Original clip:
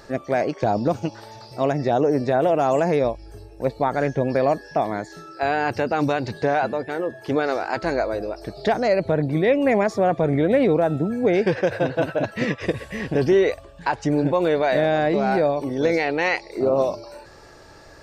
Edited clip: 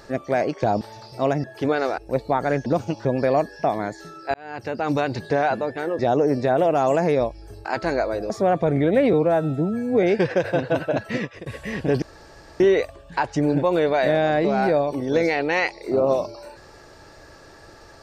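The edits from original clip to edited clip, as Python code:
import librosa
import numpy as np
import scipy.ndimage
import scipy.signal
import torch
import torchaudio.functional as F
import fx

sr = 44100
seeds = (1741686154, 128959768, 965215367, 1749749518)

y = fx.edit(x, sr, fx.move(start_s=0.81, length_s=0.39, to_s=4.17),
    fx.swap(start_s=1.83, length_s=1.66, other_s=7.11, other_length_s=0.54),
    fx.fade_in_span(start_s=5.46, length_s=0.67),
    fx.cut(start_s=8.3, length_s=1.57),
    fx.stretch_span(start_s=10.7, length_s=0.6, factor=1.5),
    fx.fade_out_to(start_s=12.33, length_s=0.4, floor_db=-21.5),
    fx.insert_room_tone(at_s=13.29, length_s=0.58), tone=tone)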